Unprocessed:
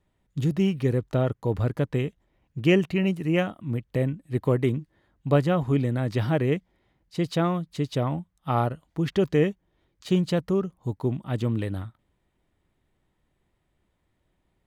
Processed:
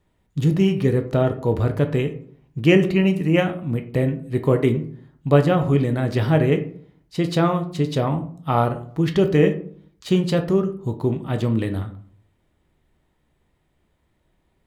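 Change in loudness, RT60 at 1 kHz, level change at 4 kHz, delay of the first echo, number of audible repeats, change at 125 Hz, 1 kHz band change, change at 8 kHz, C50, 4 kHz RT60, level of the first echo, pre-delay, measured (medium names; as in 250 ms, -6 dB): +5.5 dB, 0.50 s, +5.0 dB, no echo, no echo, +5.0 dB, +5.5 dB, no reading, 12.0 dB, 0.30 s, no echo, 12 ms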